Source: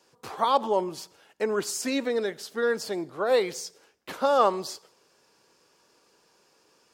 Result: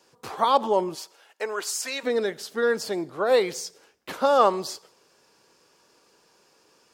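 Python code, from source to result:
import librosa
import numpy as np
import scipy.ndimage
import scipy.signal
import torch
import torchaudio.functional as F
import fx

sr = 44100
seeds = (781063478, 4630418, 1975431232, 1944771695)

y = fx.highpass(x, sr, hz=fx.line((0.94, 410.0), (2.03, 870.0)), slope=12, at=(0.94, 2.03), fade=0.02)
y = F.gain(torch.from_numpy(y), 2.5).numpy()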